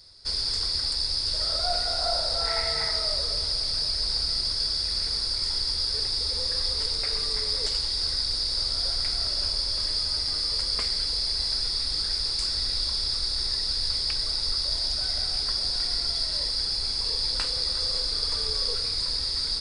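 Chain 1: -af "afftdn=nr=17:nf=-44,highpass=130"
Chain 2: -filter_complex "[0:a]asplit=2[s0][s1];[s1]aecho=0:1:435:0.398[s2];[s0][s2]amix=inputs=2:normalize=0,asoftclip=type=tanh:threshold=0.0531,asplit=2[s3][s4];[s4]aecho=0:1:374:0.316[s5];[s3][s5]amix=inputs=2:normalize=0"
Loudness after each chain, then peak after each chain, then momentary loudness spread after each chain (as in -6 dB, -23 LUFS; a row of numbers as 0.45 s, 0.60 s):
-25.0 LUFS, -27.0 LUFS; -13.5 dBFS, -23.0 dBFS; 1 LU, 1 LU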